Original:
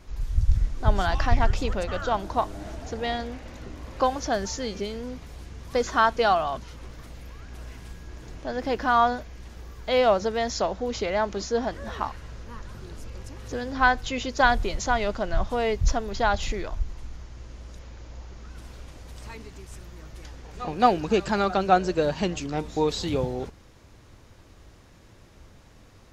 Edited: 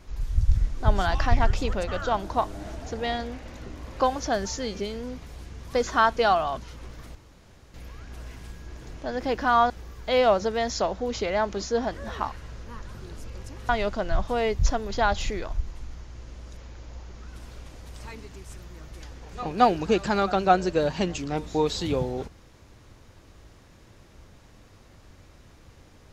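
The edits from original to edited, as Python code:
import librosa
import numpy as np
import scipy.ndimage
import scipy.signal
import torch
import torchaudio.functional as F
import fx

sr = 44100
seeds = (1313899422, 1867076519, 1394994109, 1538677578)

y = fx.edit(x, sr, fx.insert_room_tone(at_s=7.15, length_s=0.59),
    fx.cut(start_s=9.11, length_s=0.39),
    fx.cut(start_s=13.49, length_s=1.42), tone=tone)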